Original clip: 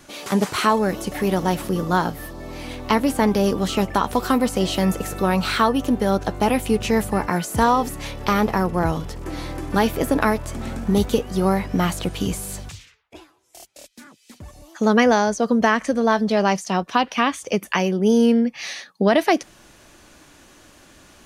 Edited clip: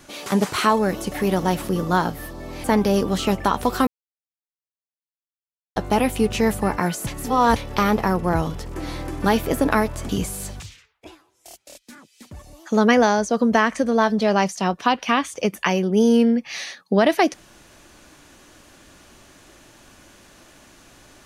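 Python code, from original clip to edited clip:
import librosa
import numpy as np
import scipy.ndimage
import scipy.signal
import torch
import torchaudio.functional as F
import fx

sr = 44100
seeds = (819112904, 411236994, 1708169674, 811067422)

y = fx.edit(x, sr, fx.cut(start_s=2.64, length_s=0.5),
    fx.silence(start_s=4.37, length_s=1.89),
    fx.reverse_span(start_s=7.57, length_s=0.49),
    fx.cut(start_s=10.59, length_s=1.59), tone=tone)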